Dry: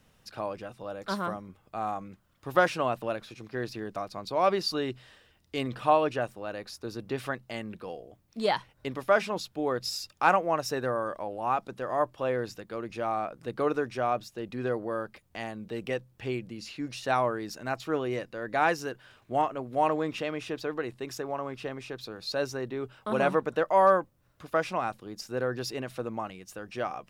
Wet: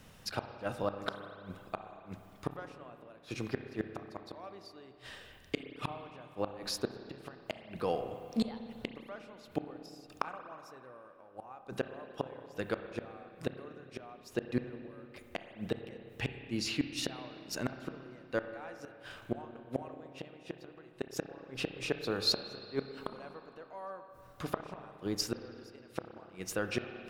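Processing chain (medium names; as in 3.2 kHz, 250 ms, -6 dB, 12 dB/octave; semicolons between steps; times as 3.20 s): inverted gate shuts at -26 dBFS, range -31 dB; spring tank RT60 2.5 s, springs 30/59 ms, chirp 25 ms, DRR 7.5 dB; trim +7 dB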